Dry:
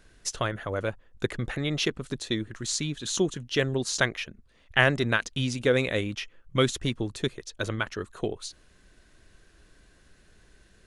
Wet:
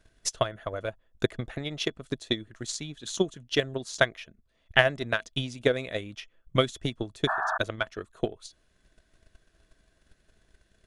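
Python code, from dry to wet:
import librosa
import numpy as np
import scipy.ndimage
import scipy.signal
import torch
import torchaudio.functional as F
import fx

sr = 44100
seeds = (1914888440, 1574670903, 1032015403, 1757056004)

y = fx.small_body(x, sr, hz=(650.0, 3400.0), ring_ms=85, db=11)
y = fx.transient(y, sr, attack_db=12, sustain_db=0)
y = fx.spec_paint(y, sr, seeds[0], shape='noise', start_s=7.27, length_s=0.31, low_hz=620.0, high_hz=1800.0, level_db=-19.0)
y = F.gain(torch.from_numpy(y), -9.5).numpy()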